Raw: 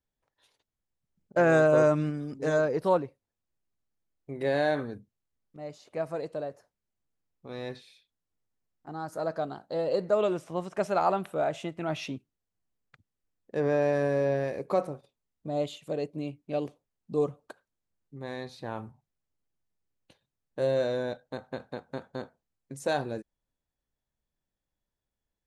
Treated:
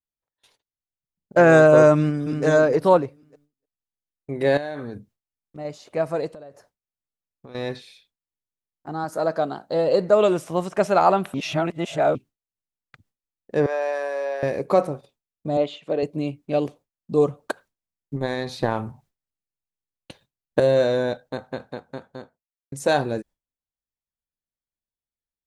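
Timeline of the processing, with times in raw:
0:01.96–0:02.45: delay throw 300 ms, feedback 30%, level −6.5 dB
0:04.57–0:05.65: downward compressor, threshold −37 dBFS
0:06.29–0:07.55: downward compressor 8 to 1, threshold −47 dBFS
0:09.04–0:09.66: high-pass filter 150 Hz
0:10.21–0:10.71: high-shelf EQ 7,700 Hz +9 dB
0:11.34–0:12.15: reverse
0:13.66–0:14.43: four-pole ladder high-pass 500 Hz, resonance 20%
0:15.57–0:16.03: band-pass filter 230–3,400 Hz
0:17.40–0:20.60: transient designer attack +10 dB, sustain +5 dB
0:21.10–0:22.72: fade out linear
whole clip: noise gate with hold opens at −56 dBFS; level +8.5 dB

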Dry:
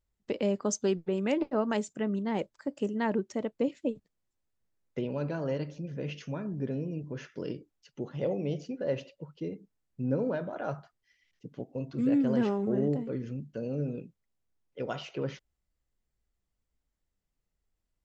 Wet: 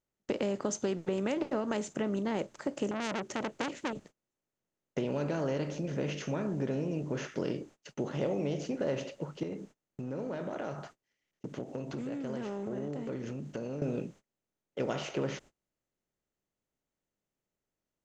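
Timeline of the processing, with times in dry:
0:02.91–0:03.93: saturating transformer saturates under 2,800 Hz
0:09.43–0:13.82: downward compressor, threshold −42 dBFS
whole clip: compressor on every frequency bin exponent 0.6; noise gate −49 dBFS, range −27 dB; downward compressor, threshold −26 dBFS; level −1.5 dB

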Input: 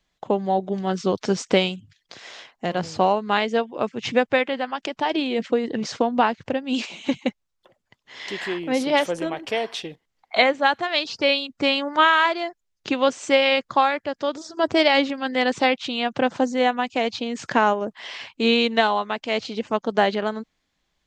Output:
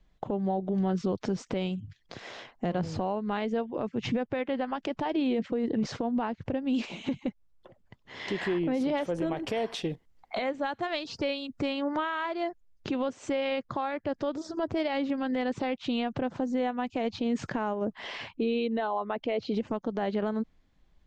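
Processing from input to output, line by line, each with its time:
0:09.26–0:11.73: high-shelf EQ 7,100 Hz +11.5 dB
0:18.33–0:19.54: spectral envelope exaggerated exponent 1.5
whole clip: downward compressor 6 to 1, threshold −27 dBFS; spectral tilt −3 dB per octave; brickwall limiter −21 dBFS

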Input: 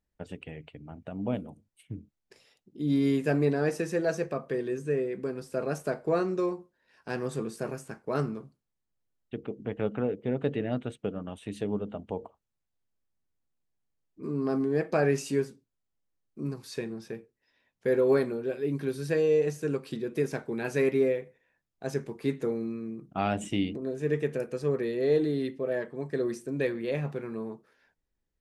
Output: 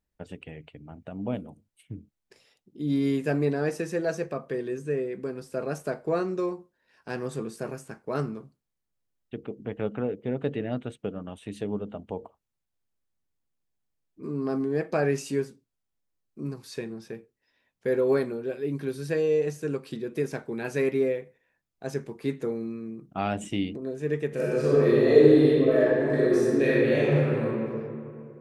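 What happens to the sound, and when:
0:24.28–0:27.46: thrown reverb, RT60 2.4 s, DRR −8.5 dB

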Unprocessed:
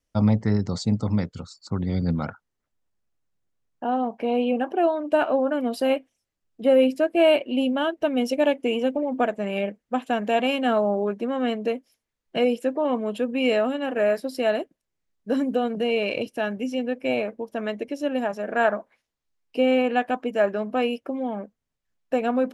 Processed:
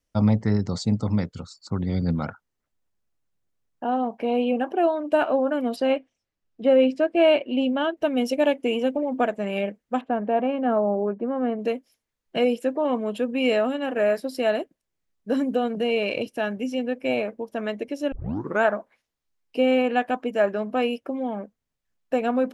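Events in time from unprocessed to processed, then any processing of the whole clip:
0:05.76–0:07.97: Bessel low-pass filter 5,100 Hz, order 4
0:10.01–0:11.59: low-pass filter 1,200 Hz
0:18.12: tape start 0.51 s

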